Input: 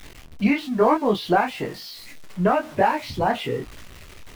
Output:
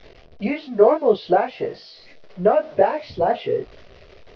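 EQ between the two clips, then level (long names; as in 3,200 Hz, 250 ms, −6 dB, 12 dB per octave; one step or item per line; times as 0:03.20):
Butterworth low-pass 5,400 Hz 48 dB per octave
flat-topped bell 520 Hz +11 dB 1.1 octaves
−5.0 dB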